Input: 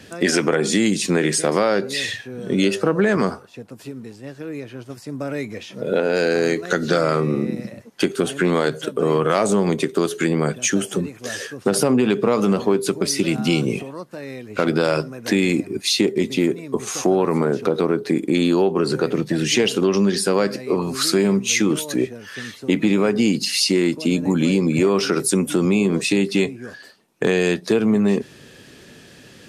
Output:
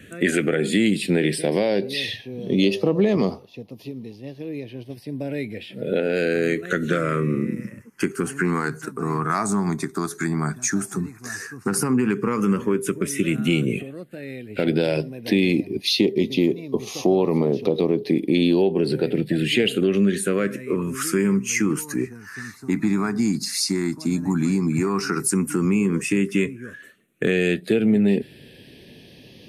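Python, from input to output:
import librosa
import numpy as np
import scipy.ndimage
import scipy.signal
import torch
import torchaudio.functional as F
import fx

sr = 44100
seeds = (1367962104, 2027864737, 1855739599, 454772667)

y = fx.phaser_stages(x, sr, stages=4, low_hz=510.0, high_hz=1500.0, hz=0.074, feedback_pct=5)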